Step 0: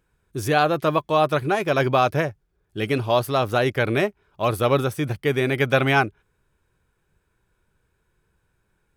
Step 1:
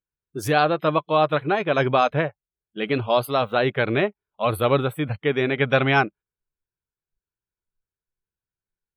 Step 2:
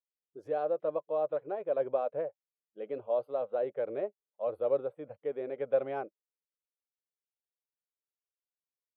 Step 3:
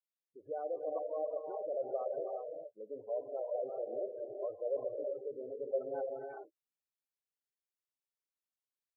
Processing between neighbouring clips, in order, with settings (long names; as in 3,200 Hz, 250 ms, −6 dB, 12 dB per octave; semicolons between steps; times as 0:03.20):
noise reduction from a noise print of the clip's start 27 dB
resonant band-pass 530 Hz, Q 4.9; level −4.5 dB
reverb whose tail is shaped and stops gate 430 ms rising, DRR 1 dB; gate on every frequency bin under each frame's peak −20 dB strong; level −7.5 dB